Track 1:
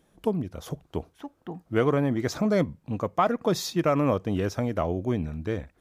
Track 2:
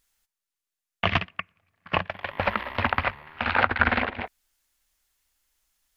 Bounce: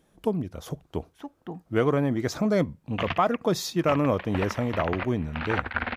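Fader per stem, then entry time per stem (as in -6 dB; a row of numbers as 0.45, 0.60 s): 0.0, -7.5 dB; 0.00, 1.95 s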